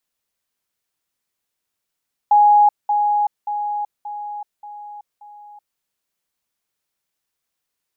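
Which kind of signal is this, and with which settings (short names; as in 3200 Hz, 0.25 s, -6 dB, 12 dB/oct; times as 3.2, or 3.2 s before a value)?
level ladder 830 Hz -8.5 dBFS, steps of -6 dB, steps 6, 0.38 s 0.20 s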